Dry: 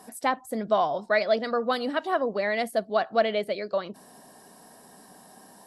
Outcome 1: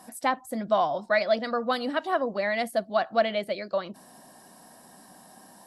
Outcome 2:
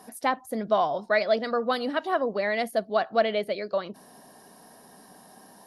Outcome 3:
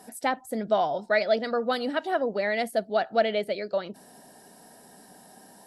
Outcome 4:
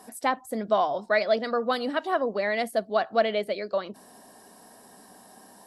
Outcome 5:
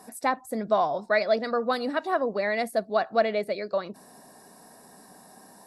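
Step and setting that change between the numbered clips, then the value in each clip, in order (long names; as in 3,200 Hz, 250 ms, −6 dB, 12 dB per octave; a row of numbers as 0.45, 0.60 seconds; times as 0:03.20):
notch filter, centre frequency: 430, 7,800, 1,100, 160, 3,100 Hertz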